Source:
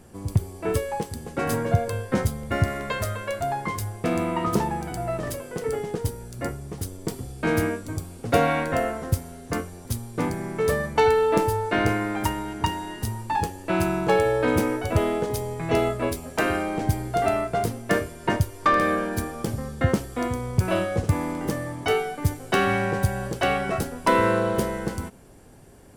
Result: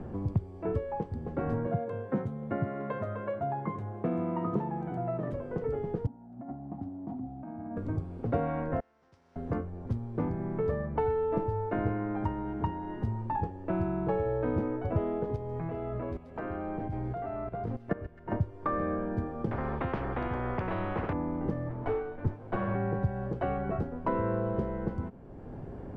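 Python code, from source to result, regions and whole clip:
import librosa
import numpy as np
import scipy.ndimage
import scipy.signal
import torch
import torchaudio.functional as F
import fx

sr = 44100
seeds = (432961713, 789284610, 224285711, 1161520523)

y = fx.chain(x, sr, fx.highpass(hz=140.0, slope=24),
    fx.notch(hz=4900.0, q=5.1), at=(1.66, 5.33))
y = fx.chain(y, sr, fx.double_bandpass(hz=440.0, octaves=1.5),
    fx.over_compress(threshold_db=-43.0, ratio=-1.0), at=(6.06, 7.77))
y = fx.chain(y, sr, fx.bandpass_q(hz=5500.0, q=7.2),
    fx.spectral_comp(ratio=2.0), at=(8.8, 9.36))
y = fx.chain(y, sr, fx.peak_eq(hz=1700.0, db=3.5, octaves=2.7),
    fx.level_steps(step_db=17),
    fx.echo_wet_highpass(ms=132, feedback_pct=65, hz=3000.0, wet_db=-7.5), at=(15.36, 18.32))
y = fx.chain(y, sr, fx.lowpass(hz=2000.0, slope=12),
    fx.spectral_comp(ratio=10.0), at=(19.51, 21.13))
y = fx.chain(y, sr, fx.lower_of_two(delay_ms=8.9),
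    fx.high_shelf(hz=5500.0, db=-7.0), at=(21.69, 22.75))
y = scipy.signal.sosfilt(scipy.signal.butter(2, 1100.0, 'lowpass', fs=sr, output='sos'), y)
y = fx.low_shelf(y, sr, hz=220.0, db=6.0)
y = fx.band_squash(y, sr, depth_pct=70)
y = y * librosa.db_to_amplitude(-8.0)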